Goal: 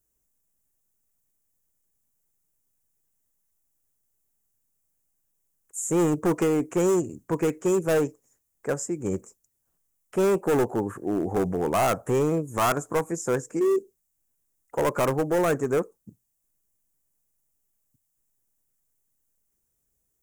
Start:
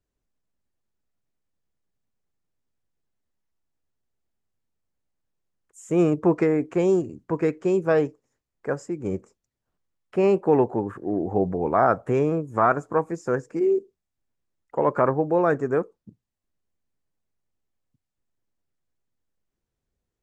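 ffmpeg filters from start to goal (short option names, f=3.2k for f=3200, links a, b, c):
-af "volume=18.5dB,asoftclip=hard,volume=-18.5dB,aexciter=amount=5:drive=7.8:freq=6.2k"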